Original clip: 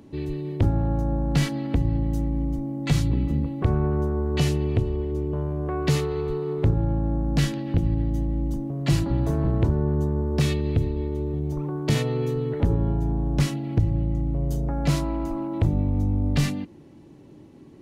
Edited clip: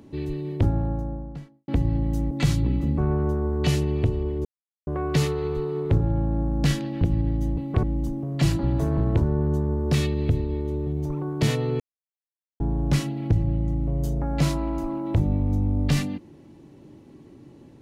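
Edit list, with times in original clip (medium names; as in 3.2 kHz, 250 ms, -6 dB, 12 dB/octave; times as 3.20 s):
0.51–1.68 s: studio fade out
2.31–2.78 s: delete
3.45–3.71 s: move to 8.30 s
5.18–5.60 s: mute
12.27–13.07 s: mute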